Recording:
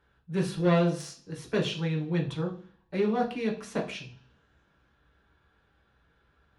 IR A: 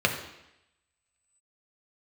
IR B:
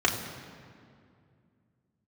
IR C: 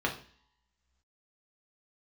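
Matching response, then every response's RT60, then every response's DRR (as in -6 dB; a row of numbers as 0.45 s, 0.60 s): C; 0.85 s, 2.3 s, no single decay rate; 2.0 dB, -2.5 dB, -0.5 dB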